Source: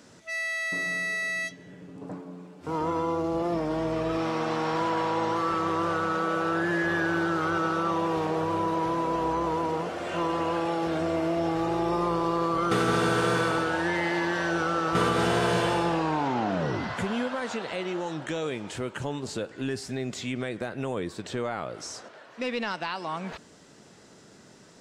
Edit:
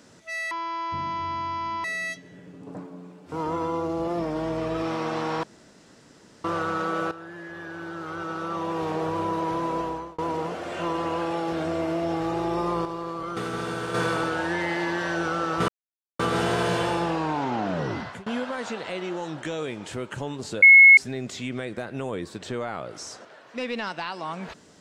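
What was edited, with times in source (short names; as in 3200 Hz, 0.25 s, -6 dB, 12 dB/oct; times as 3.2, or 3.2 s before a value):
0.51–1.19 speed 51%
4.78–5.79 room tone
6.46–8.3 fade in quadratic, from -14.5 dB
9.12–9.53 fade out
12.2–13.29 gain -6.5 dB
15.03 insert silence 0.51 s
16.8–17.1 fade out, to -23 dB
19.46–19.81 bleep 2180 Hz -7.5 dBFS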